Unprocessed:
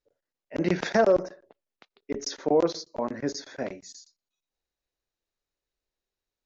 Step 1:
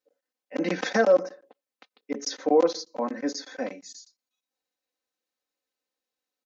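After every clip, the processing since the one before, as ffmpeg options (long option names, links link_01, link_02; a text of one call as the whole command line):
ffmpeg -i in.wav -af "highpass=230,aecho=1:1:3.9:0.9,volume=-1dB" out.wav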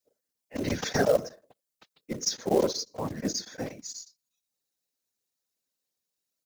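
ffmpeg -i in.wav -af "afftfilt=real='hypot(re,im)*cos(2*PI*random(0))':imag='hypot(re,im)*sin(2*PI*random(1))':win_size=512:overlap=0.75,bass=frequency=250:gain=10,treble=frequency=4000:gain=13,acrusher=bits=5:mode=log:mix=0:aa=0.000001" out.wav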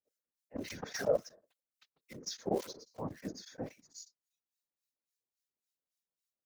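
ffmpeg -i in.wav -filter_complex "[0:a]acrossover=split=1400[link_01][link_02];[link_01]aeval=exprs='val(0)*(1-1/2+1/2*cos(2*PI*3.6*n/s))':channel_layout=same[link_03];[link_02]aeval=exprs='val(0)*(1-1/2-1/2*cos(2*PI*3.6*n/s))':channel_layout=same[link_04];[link_03][link_04]amix=inputs=2:normalize=0,volume=-5.5dB" out.wav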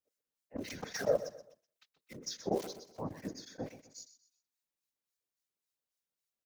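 ffmpeg -i in.wav -af "aecho=1:1:126|252|378:0.2|0.0678|0.0231" out.wav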